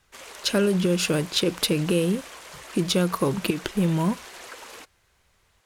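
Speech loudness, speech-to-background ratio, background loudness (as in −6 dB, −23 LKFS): −24.5 LKFS, 17.0 dB, −41.5 LKFS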